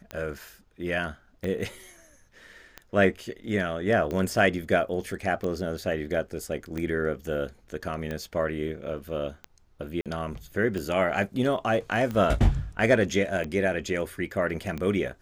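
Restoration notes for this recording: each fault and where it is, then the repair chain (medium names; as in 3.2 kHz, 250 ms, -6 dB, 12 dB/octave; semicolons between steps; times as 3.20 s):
tick 45 rpm -20 dBFS
10.01–10.06 s: dropout 47 ms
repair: de-click; interpolate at 10.01 s, 47 ms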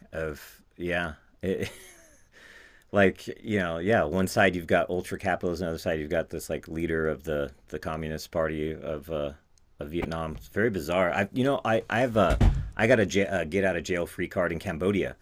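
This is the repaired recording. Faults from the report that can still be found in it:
nothing left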